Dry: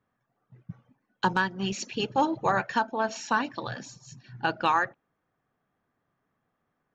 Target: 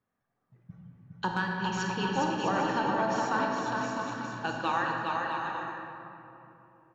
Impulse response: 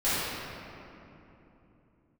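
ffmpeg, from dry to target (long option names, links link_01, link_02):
-filter_complex "[0:a]aecho=1:1:410|656|803.6|892.2|945.3:0.631|0.398|0.251|0.158|0.1,asplit=2[link_01][link_02];[1:a]atrim=start_sample=2205,adelay=33[link_03];[link_02][link_03]afir=irnorm=-1:irlink=0,volume=-14.5dB[link_04];[link_01][link_04]amix=inputs=2:normalize=0,volume=-6.5dB"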